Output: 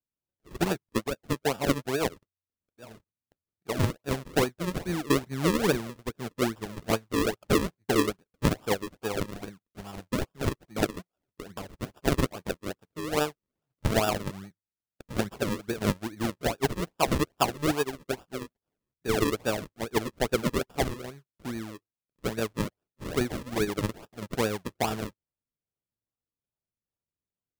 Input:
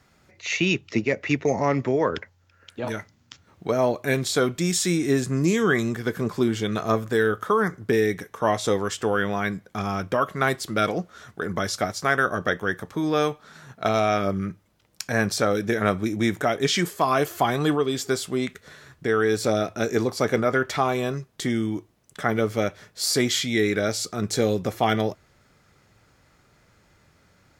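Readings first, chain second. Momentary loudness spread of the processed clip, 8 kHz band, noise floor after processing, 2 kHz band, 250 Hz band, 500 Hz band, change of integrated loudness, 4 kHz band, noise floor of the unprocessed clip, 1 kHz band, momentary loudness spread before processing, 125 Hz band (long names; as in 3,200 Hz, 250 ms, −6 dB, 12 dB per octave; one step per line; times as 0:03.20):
14 LU, −7.0 dB, below −85 dBFS, −8.5 dB, −5.5 dB, −7.0 dB, −6.0 dB, −6.0 dB, −61 dBFS, −7.0 dB, 8 LU, −4.0 dB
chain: sample-and-hold swept by an LFO 41×, swing 100% 2.4 Hz
expander for the loud parts 2.5 to 1, over −43 dBFS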